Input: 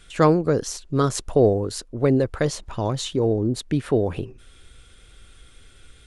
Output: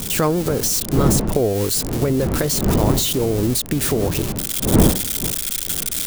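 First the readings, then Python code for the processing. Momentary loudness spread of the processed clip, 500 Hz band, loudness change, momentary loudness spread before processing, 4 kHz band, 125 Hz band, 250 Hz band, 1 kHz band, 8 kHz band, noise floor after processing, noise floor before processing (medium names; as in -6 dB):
4 LU, +0.5 dB, +4.0 dB, 9 LU, +10.5 dB, +5.0 dB, +4.0 dB, +1.5 dB, +14.0 dB, -28 dBFS, -51 dBFS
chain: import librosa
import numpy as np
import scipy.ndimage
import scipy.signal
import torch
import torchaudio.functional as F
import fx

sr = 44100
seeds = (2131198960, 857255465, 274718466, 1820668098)

y = x + 0.5 * 10.0 ** (-18.0 / 20.0) * np.diff(np.sign(x), prepend=np.sign(x[:1]))
y = fx.recorder_agc(y, sr, target_db=-10.0, rise_db_per_s=68.0, max_gain_db=30)
y = fx.dmg_wind(y, sr, seeds[0], corner_hz=280.0, level_db=-20.0)
y = y * 10.0 ** (-2.5 / 20.0)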